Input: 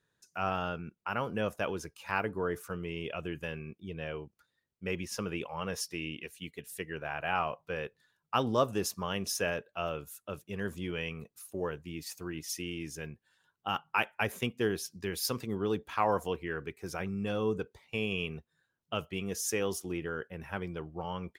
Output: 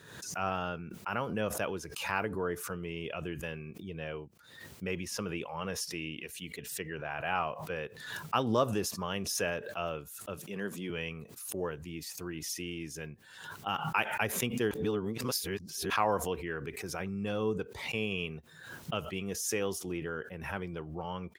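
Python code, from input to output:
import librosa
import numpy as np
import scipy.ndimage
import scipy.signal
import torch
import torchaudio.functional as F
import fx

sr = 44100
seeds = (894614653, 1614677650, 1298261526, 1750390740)

y = fx.peak_eq(x, sr, hz=11000.0, db=-12.0, octaves=0.7, at=(6.56, 7.11))
y = fx.highpass(y, sr, hz=150.0, slope=24, at=(10.37, 10.9))
y = fx.edit(y, sr, fx.reverse_span(start_s=14.71, length_s=1.19), tone=tone)
y = scipy.signal.sosfilt(scipy.signal.butter(2, 63.0, 'highpass', fs=sr, output='sos'), y)
y = fx.pre_swell(y, sr, db_per_s=58.0)
y = F.gain(torch.from_numpy(y), -1.0).numpy()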